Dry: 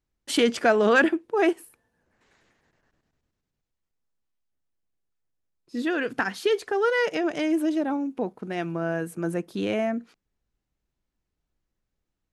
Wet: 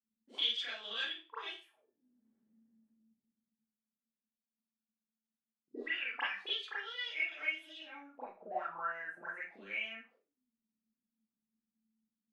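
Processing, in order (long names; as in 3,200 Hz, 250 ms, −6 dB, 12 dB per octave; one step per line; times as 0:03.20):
envelope filter 220–3,400 Hz, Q 20, up, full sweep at −21 dBFS
four-comb reverb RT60 0.31 s, combs from 28 ms, DRR −9 dB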